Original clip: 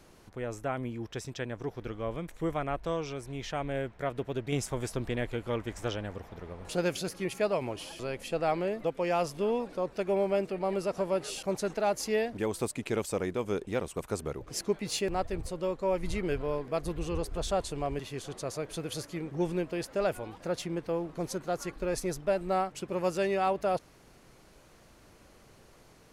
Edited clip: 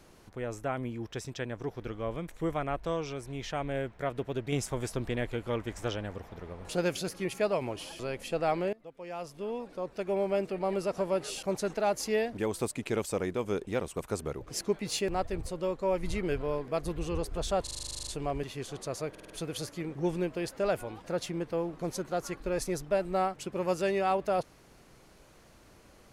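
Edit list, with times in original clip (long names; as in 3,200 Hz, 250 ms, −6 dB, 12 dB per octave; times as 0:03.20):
0:08.73–0:10.55: fade in, from −23 dB
0:17.63: stutter 0.04 s, 12 plays
0:18.66: stutter 0.05 s, 5 plays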